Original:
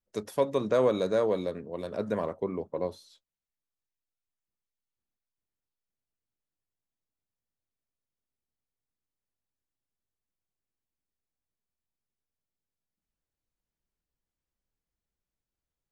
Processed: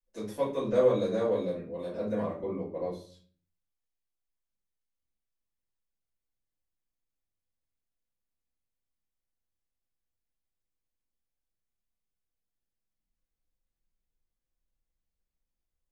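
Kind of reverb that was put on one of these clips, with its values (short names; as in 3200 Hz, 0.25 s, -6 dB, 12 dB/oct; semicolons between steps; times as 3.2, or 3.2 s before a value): shoebox room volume 34 m³, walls mixed, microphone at 2 m; gain -14.5 dB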